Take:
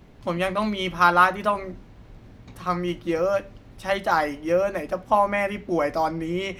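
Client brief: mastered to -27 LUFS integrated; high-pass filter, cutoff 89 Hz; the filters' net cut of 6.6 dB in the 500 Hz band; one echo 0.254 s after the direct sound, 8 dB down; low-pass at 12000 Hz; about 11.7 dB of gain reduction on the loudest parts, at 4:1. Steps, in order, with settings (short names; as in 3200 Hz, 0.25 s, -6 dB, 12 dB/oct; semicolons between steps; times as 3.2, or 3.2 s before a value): HPF 89 Hz; LPF 12000 Hz; bell 500 Hz -8.5 dB; compressor 4:1, threshold -27 dBFS; echo 0.254 s -8 dB; gain +4.5 dB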